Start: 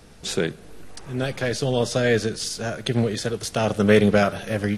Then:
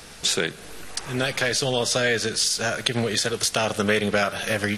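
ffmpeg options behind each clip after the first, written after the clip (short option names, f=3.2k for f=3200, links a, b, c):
-af "tiltshelf=f=710:g=-6.5,acompressor=threshold=-27dB:ratio=3,volume=6dB"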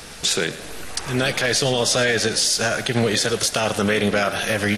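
-filter_complex "[0:a]alimiter=limit=-14.5dB:level=0:latency=1:release=25,asplit=5[a][b][c][d][e];[b]adelay=109,afreqshift=74,volume=-15.5dB[f];[c]adelay=218,afreqshift=148,volume=-21.9dB[g];[d]adelay=327,afreqshift=222,volume=-28.3dB[h];[e]adelay=436,afreqshift=296,volume=-34.6dB[i];[a][f][g][h][i]amix=inputs=5:normalize=0,volume=5dB"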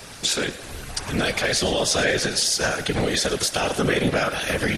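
-af "afftfilt=real='hypot(re,im)*cos(2*PI*random(0))':imag='hypot(re,im)*sin(2*PI*random(1))':win_size=512:overlap=0.75,volume=4dB"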